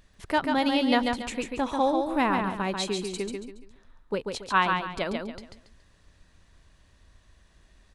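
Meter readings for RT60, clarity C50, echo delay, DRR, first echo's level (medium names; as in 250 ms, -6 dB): no reverb, no reverb, 140 ms, no reverb, -4.5 dB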